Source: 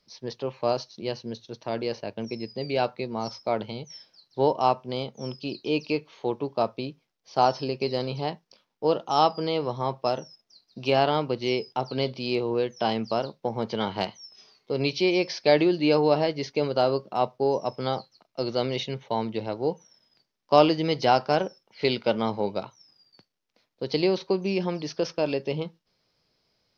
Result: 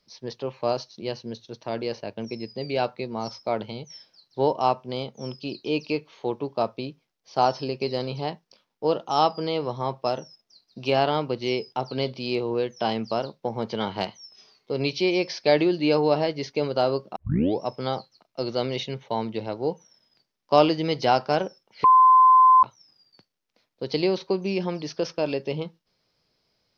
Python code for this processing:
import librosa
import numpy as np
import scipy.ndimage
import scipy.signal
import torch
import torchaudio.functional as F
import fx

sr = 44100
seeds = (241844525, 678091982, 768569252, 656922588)

y = fx.edit(x, sr, fx.tape_start(start_s=17.16, length_s=0.46),
    fx.bleep(start_s=21.84, length_s=0.79, hz=1030.0, db=-11.0), tone=tone)